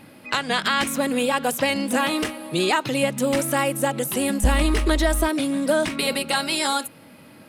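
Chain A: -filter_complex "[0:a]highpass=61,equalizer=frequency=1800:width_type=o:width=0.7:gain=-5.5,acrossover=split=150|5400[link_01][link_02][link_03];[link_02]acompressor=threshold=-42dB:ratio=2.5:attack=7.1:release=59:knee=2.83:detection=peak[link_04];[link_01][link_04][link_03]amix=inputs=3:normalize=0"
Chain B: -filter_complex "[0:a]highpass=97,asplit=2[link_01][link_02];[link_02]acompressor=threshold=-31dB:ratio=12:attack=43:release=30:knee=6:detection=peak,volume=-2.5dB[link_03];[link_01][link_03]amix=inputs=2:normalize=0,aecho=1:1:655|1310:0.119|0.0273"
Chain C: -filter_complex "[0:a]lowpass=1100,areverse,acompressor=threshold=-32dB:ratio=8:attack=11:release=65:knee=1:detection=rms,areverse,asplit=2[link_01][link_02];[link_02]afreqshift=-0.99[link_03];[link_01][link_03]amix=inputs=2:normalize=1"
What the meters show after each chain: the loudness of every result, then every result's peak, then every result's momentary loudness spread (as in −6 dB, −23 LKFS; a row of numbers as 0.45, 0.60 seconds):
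−30.5, −19.5, −38.0 LKFS; −12.0, −5.0, −23.0 dBFS; 7, 4, 4 LU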